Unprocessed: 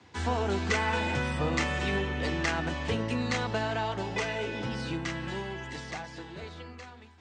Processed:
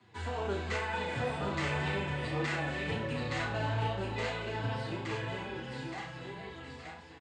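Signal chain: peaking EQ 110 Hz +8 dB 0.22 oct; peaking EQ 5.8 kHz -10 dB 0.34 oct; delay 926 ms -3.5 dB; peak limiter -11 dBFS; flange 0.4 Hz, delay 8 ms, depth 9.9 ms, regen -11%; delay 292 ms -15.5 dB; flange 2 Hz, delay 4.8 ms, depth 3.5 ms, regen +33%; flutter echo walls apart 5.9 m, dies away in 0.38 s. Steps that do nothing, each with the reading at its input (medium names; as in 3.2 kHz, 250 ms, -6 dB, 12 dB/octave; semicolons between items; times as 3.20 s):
peak limiter -11 dBFS: peak at its input -14.0 dBFS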